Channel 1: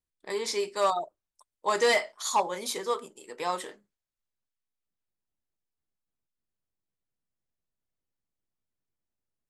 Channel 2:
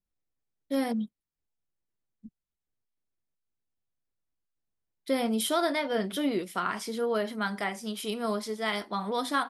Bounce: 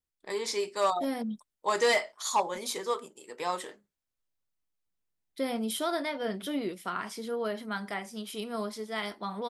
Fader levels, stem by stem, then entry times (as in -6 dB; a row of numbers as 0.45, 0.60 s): -1.5, -4.0 dB; 0.00, 0.30 s